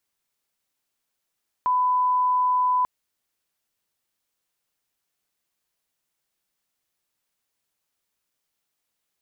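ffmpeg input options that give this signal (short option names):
-f lavfi -i "sine=f=1000:d=1.19:r=44100,volume=0.06dB"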